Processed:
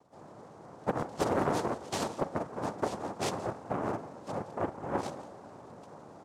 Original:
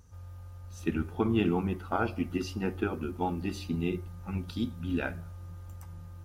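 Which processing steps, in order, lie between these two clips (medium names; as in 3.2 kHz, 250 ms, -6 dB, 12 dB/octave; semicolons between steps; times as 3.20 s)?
steep low-pass 1.2 kHz; echo from a far wall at 29 m, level -17 dB; noise-vocoded speech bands 2; on a send at -18 dB: reverberation RT60 1.4 s, pre-delay 3 ms; on the sum: loudspeaker Doppler distortion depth 0.55 ms; trim -2 dB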